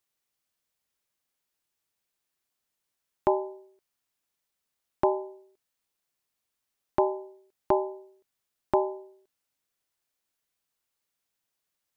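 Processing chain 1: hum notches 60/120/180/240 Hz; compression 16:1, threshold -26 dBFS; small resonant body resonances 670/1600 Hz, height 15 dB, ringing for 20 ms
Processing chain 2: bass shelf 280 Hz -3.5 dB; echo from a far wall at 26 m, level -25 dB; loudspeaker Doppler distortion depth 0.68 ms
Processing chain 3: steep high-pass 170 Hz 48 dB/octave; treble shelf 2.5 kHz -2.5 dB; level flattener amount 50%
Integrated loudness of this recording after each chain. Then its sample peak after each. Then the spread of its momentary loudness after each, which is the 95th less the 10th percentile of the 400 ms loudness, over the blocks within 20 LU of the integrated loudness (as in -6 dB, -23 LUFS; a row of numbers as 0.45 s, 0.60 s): -29.5 LUFS, -31.0 LUFS, -29.0 LUFS; -6.5 dBFS, -10.5 dBFS, -9.5 dBFS; 14 LU, 15 LU, 18 LU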